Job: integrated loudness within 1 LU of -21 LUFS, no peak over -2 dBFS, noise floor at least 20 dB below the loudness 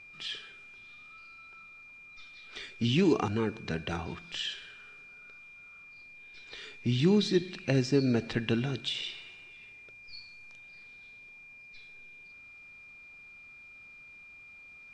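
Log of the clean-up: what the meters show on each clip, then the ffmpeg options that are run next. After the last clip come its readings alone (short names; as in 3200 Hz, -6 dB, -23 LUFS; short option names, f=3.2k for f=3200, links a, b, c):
steady tone 2400 Hz; tone level -49 dBFS; loudness -30.5 LUFS; peak -13.0 dBFS; loudness target -21.0 LUFS
-> -af "bandreject=f=2.4k:w=30"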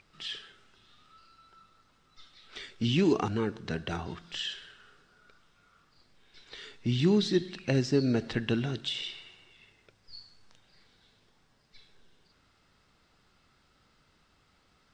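steady tone none; loudness -30.0 LUFS; peak -13.5 dBFS; loudness target -21.0 LUFS
-> -af "volume=9dB"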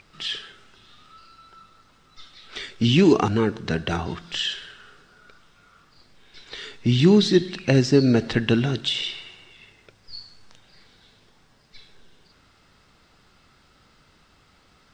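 loudness -21.0 LUFS; peak -4.5 dBFS; noise floor -59 dBFS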